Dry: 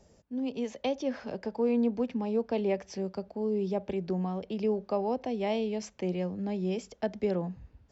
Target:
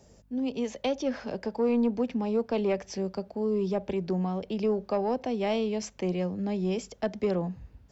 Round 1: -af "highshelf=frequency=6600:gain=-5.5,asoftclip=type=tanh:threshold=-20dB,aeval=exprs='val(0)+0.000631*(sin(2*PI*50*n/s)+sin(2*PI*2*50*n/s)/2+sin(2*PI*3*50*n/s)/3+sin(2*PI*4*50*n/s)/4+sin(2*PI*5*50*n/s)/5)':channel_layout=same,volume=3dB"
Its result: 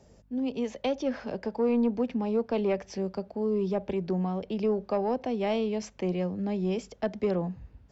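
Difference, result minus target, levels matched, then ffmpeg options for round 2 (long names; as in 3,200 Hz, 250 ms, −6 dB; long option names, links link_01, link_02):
8,000 Hz band −5.0 dB
-af "highshelf=frequency=6600:gain=5,asoftclip=type=tanh:threshold=-20dB,aeval=exprs='val(0)+0.000631*(sin(2*PI*50*n/s)+sin(2*PI*2*50*n/s)/2+sin(2*PI*3*50*n/s)/3+sin(2*PI*4*50*n/s)/4+sin(2*PI*5*50*n/s)/5)':channel_layout=same,volume=3dB"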